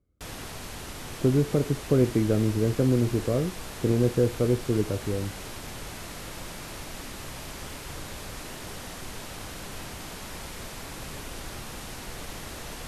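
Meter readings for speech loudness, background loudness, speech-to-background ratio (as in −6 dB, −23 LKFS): −25.5 LKFS, −38.5 LKFS, 13.0 dB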